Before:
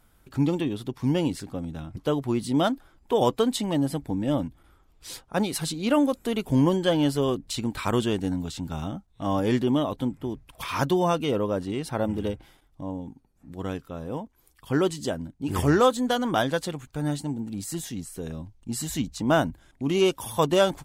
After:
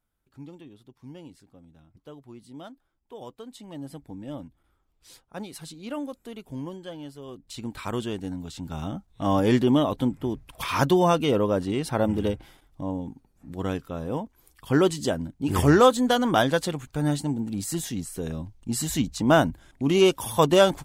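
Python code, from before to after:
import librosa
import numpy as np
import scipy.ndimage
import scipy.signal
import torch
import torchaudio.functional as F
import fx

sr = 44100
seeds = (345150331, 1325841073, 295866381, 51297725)

y = fx.gain(x, sr, db=fx.line((3.44, -19.5), (3.91, -11.5), (6.13, -11.5), (7.21, -18.0), (7.65, -5.5), (8.41, -5.5), (9.12, 3.0)))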